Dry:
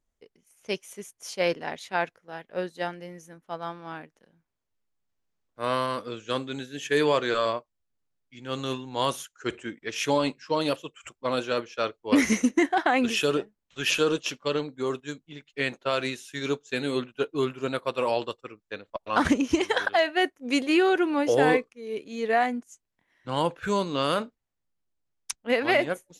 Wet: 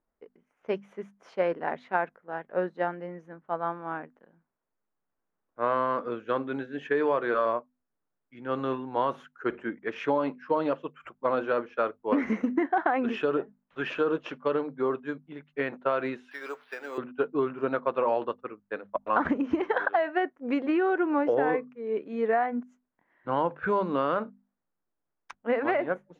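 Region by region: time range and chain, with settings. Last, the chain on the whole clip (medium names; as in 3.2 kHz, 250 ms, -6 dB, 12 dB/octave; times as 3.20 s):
16.31–16.98 s: zero-crossing glitches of -30 dBFS + high-pass 650 Hz + careless resampling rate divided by 6×, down filtered, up zero stuff
whole clip: hum notches 50/100/150/200/250 Hz; compression, threshold -25 dBFS; FFT filter 110 Hz 0 dB, 190 Hz +8 dB, 1 kHz +11 dB, 1.5 kHz +10 dB, 9.7 kHz -30 dB; trim -6 dB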